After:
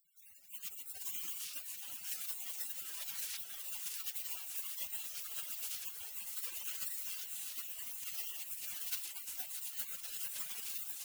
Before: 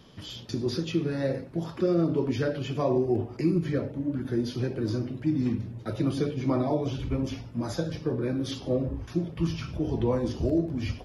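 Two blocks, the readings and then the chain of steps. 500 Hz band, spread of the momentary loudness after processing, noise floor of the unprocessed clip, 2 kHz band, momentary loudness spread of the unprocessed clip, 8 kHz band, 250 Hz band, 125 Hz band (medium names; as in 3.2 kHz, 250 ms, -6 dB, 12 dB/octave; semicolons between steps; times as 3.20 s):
under -40 dB, 4 LU, -44 dBFS, -8.0 dB, 6 LU, +8.5 dB, under -40 dB, under -40 dB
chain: spectral contrast reduction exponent 0.24; peaking EQ 160 Hz -9.5 dB 0.64 oct; integer overflow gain 18 dB; peaking EQ 2.8 kHz -7 dB 0.36 oct; de-hum 107.6 Hz, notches 2; reverb removal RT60 0.83 s; on a send: filtered feedback delay 114 ms, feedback 81%, low-pass 2 kHz, level -12 dB; on the sum: compression 12:1, threshold -33 dBFS, peak gain reduction 11 dB; spectral gate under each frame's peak -25 dB weak; bit-crushed delay 642 ms, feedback 55%, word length 13-bit, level -10 dB; trim +15.5 dB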